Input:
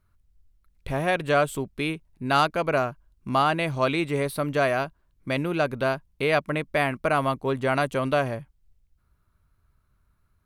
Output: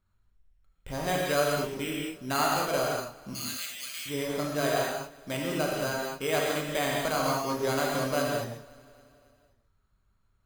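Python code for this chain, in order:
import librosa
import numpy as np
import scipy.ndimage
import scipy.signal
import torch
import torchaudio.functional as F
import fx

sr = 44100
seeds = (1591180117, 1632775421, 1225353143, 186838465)

p1 = np.repeat(x[::8], 8)[:len(x)]
p2 = fx.bessel_highpass(p1, sr, hz=2900.0, order=8, at=(3.33, 4.06))
p3 = p2 + fx.echo_feedback(p2, sr, ms=272, feedback_pct=60, wet_db=-23.0, dry=0)
p4 = fx.rev_gated(p3, sr, seeds[0], gate_ms=250, shape='flat', drr_db=-3.0)
y = p4 * 10.0 ** (-8.5 / 20.0)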